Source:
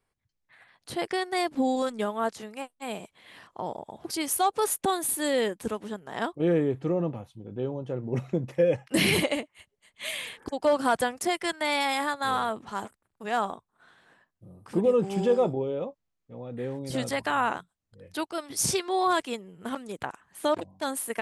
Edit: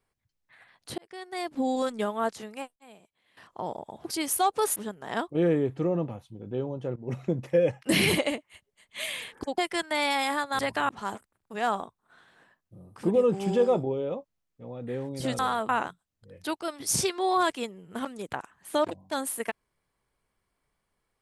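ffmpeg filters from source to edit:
-filter_complex "[0:a]asplit=11[s0][s1][s2][s3][s4][s5][s6][s7][s8][s9][s10];[s0]atrim=end=0.98,asetpts=PTS-STARTPTS,afade=t=out:st=0.976:d=0.004:c=hsin[s11];[s1]atrim=start=0.98:end=2.76,asetpts=PTS-STARTPTS,afade=t=in:d=0.86,afade=t=out:st=1.39:d=0.39:c=log:silence=0.141254[s12];[s2]atrim=start=2.76:end=3.37,asetpts=PTS-STARTPTS,volume=0.141[s13];[s3]atrim=start=3.37:end=4.762,asetpts=PTS-STARTPTS,afade=t=in:d=0.39:c=log:silence=0.141254[s14];[s4]atrim=start=5.808:end=8.01,asetpts=PTS-STARTPTS,afade=t=out:st=2.198:d=0.004:c=hsin:silence=0.199526[s15];[s5]atrim=start=8.01:end=10.632,asetpts=PTS-STARTPTS,afade=t=in:d=0.27:silence=0.199526[s16];[s6]atrim=start=11.278:end=12.292[s17];[s7]atrim=start=17.088:end=17.392[s18];[s8]atrim=start=12.588:end=17.092[s19];[s9]atrim=start=12.288:end=12.592[s20];[s10]atrim=start=17.388[s21];[s11][s12][s13][s14]concat=n=4:v=0:a=1[s22];[s15][s16]concat=n=2:v=0:a=1[s23];[s22][s23]acrossfade=d=0.004:c1=hsin:c2=hsin[s24];[s24][s17]acrossfade=d=0.004:c1=hsin:c2=hsin[s25];[s25][s18]acrossfade=d=0.004:c1=hsin:c2=hsin[s26];[s26][s19]acrossfade=d=0.004:c1=hsin:c2=hsin[s27];[s27][s20]acrossfade=d=0.004:c1=hsin:c2=hsin[s28];[s28][s21]acrossfade=d=0.004:c1=hsin:c2=hsin"

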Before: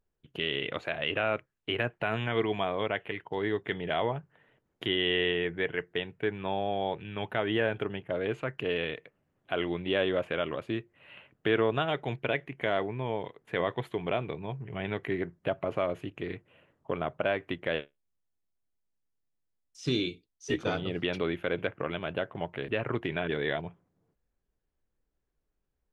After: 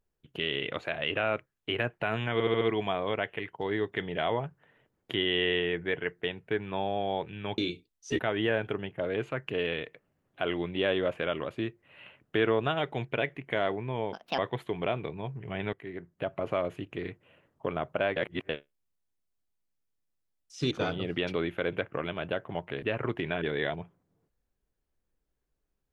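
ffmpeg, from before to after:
-filter_complex "[0:a]asplit=13[s0][s1][s2][s3][s4][s5][s6][s7][s8][s9][s10][s11][s12];[s0]atrim=end=2.402[s13];[s1]atrim=start=2.328:end=2.402[s14];[s2]atrim=start=2.328:end=2.402[s15];[s3]atrim=start=2.328:end=2.402[s16];[s4]atrim=start=2.328:end=7.302[s17];[s5]atrim=start=19.958:end=20.572[s18];[s6]atrim=start=7.298:end=13.244[s19];[s7]atrim=start=13.24:end=13.63,asetpts=PTS-STARTPTS,asetrate=68355,aresample=44100,atrim=end_sample=11096,asetpts=PTS-STARTPTS[s20];[s8]atrim=start=13.626:end=14.98,asetpts=PTS-STARTPTS,afade=t=out:st=1.35:d=0.004:c=hsin:silence=0.16788[s21];[s9]atrim=start=14.98:end=17.412,asetpts=PTS-STARTPTS,afade=t=in:d=0.77:silence=0.16788[s22];[s10]atrim=start=17.408:end=17.742,asetpts=PTS-STARTPTS,areverse[s23];[s11]atrim=start=17.738:end=19.962[s24];[s12]atrim=start=20.568[s25];[s13][s14]acrossfade=d=0.004:c1=hsin:c2=hsin[s26];[s26][s15]acrossfade=d=0.004:c1=hsin:c2=hsin[s27];[s27][s16]acrossfade=d=0.004:c1=hsin:c2=hsin[s28];[s28][s17]acrossfade=d=0.004:c1=hsin:c2=hsin[s29];[s29][s18]acrossfade=d=0.004:c1=hsin:c2=hsin[s30];[s30][s19]acrossfade=d=0.004:c1=hsin:c2=hsin[s31];[s31][s20]acrossfade=d=0.004:c1=hsin:c2=hsin[s32];[s21][s22]concat=n=2:v=0:a=1[s33];[s32][s33]acrossfade=d=0.004:c1=hsin:c2=hsin[s34];[s34][s23]acrossfade=d=0.004:c1=hsin:c2=hsin[s35];[s35][s24]acrossfade=d=0.004:c1=hsin:c2=hsin[s36];[s36][s25]acrossfade=d=0.004:c1=hsin:c2=hsin"

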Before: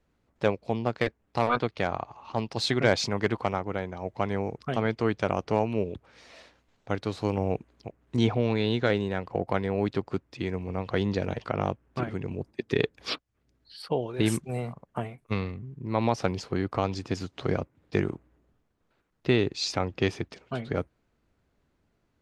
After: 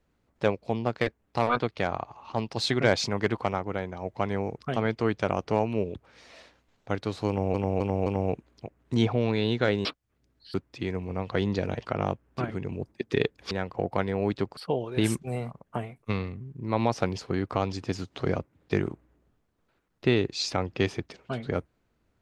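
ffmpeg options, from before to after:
-filter_complex "[0:a]asplit=8[s0][s1][s2][s3][s4][s5][s6][s7];[s0]atrim=end=7.542[s8];[s1]atrim=start=7.278:end=7.542[s9];[s2]atrim=start=7.278:end=7.542[s10];[s3]atrim=start=7.278:end=9.072[s11];[s4]atrim=start=13.098:end=13.792[s12];[s5]atrim=start=10.128:end=13.102[s13];[s6]atrim=start=9.068:end=10.132[s14];[s7]atrim=start=13.788[s15];[s8][s9]acrossfade=d=0.004:c1=hsin:c2=hsin[s16];[s16][s10]acrossfade=d=0.004:c1=hsin:c2=hsin[s17];[s17][s11]acrossfade=d=0.004:c1=hsin:c2=hsin[s18];[s18][s12]acrossfade=d=0.004:c1=hsin:c2=hsin[s19];[s19][s13]acrossfade=d=0.004:c1=hsin:c2=hsin[s20];[s20][s14]acrossfade=d=0.004:c1=hsin:c2=hsin[s21];[s21][s15]acrossfade=d=0.004:c1=hsin:c2=hsin"

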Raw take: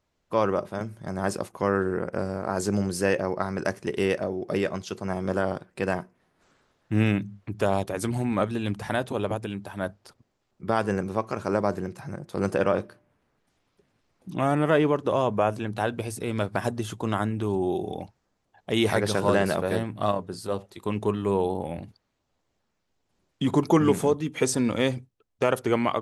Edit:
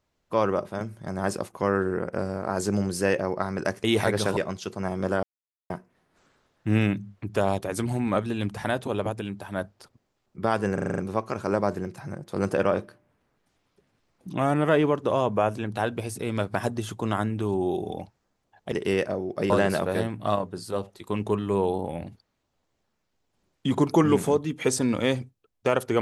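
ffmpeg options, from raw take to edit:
-filter_complex "[0:a]asplit=13[s0][s1][s2][s3][s4][s5][s6][s7][s8][s9][s10][s11][s12];[s0]atrim=end=3.842[s13];[s1]atrim=start=18.728:end=19.262[s14];[s2]atrim=start=4.618:end=5.48,asetpts=PTS-STARTPTS,afade=t=out:st=0.858:d=0.004:c=hsin[s15];[s3]atrim=start=5.48:end=5.95,asetpts=PTS-STARTPTS,volume=0[s16];[s4]atrim=start=5.95:end=11.032,asetpts=PTS-STARTPTS,afade=t=in:d=0.004:c=hsin[s17];[s5]atrim=start=10.988:end=11.032[s18];[s6]atrim=start=10.988:end=11.032[s19];[s7]atrim=start=10.988:end=11.032[s20];[s8]atrim=start=10.988:end=11.032[s21];[s9]atrim=start=10.988:end=11.032[s22];[s10]atrim=start=10.988:end=18.732[s23];[s11]atrim=start=3.838:end=4.622[s24];[s12]atrim=start=19.258[s25];[s13][s14]acrossfade=d=0.004:c1=hsin:c2=hsin[s26];[s15][s16][s17]concat=n=3:v=0:a=1[s27];[s26][s27]acrossfade=d=0.004:c1=hsin:c2=hsin[s28];[s28][s18]acrossfade=d=0.004:c1=hsin:c2=hsin[s29];[s29][s19]acrossfade=d=0.004:c1=hsin:c2=hsin[s30];[s30][s20]acrossfade=d=0.004:c1=hsin:c2=hsin[s31];[s31][s21]acrossfade=d=0.004:c1=hsin:c2=hsin[s32];[s32][s22]acrossfade=d=0.004:c1=hsin:c2=hsin[s33];[s33][s23]acrossfade=d=0.004:c1=hsin:c2=hsin[s34];[s34][s24]acrossfade=d=0.004:c1=hsin:c2=hsin[s35];[s35][s25]acrossfade=d=0.004:c1=hsin:c2=hsin"

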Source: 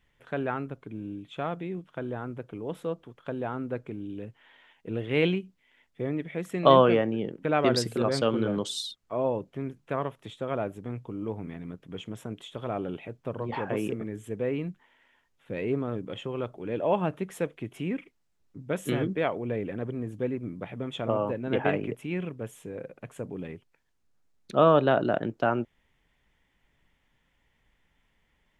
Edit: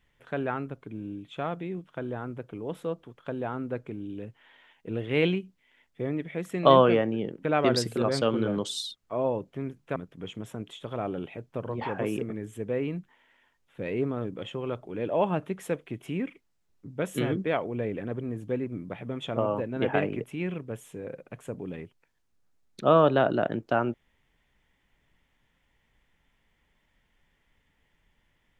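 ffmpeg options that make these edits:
-filter_complex "[0:a]asplit=2[s0][s1];[s0]atrim=end=9.962[s2];[s1]atrim=start=11.668[s3];[s2][s3]acrossfade=d=0.004:c1=hsin:c2=hsin"

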